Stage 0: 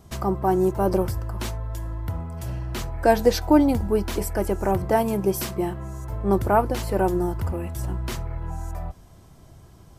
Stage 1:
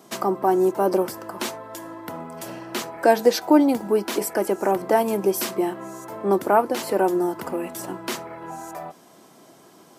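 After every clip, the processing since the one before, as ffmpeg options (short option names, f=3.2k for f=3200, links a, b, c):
-filter_complex "[0:a]highpass=f=230:w=0.5412,highpass=f=230:w=1.3066,asplit=2[a][b];[b]acompressor=threshold=-29dB:ratio=6,volume=-0.5dB[c];[a][c]amix=inputs=2:normalize=0"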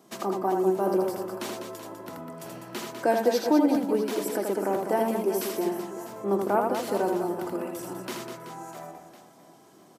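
-filter_complex "[0:a]equalizer=f=200:w=0.48:g=3,asplit=2[a][b];[b]aecho=0:1:80|200|380|650|1055:0.631|0.398|0.251|0.158|0.1[c];[a][c]amix=inputs=2:normalize=0,volume=-8.5dB"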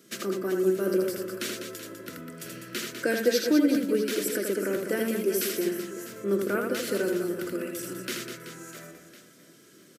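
-af "firequalizer=gain_entry='entry(530,0);entry(810,-25);entry(1400,5)':delay=0.05:min_phase=1"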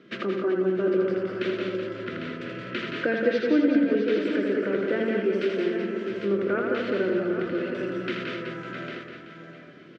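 -filter_complex "[0:a]lowpass=f=3.1k:w=0.5412,lowpass=f=3.1k:w=1.3066,aecho=1:1:172|193|662|801:0.531|0.299|0.237|0.316,asplit=2[a][b];[b]acompressor=threshold=-34dB:ratio=6,volume=3dB[c];[a][c]amix=inputs=2:normalize=0,volume=-2dB"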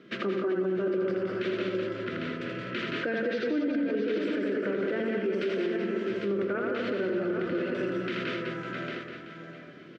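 -af "alimiter=limit=-21.5dB:level=0:latency=1:release=57"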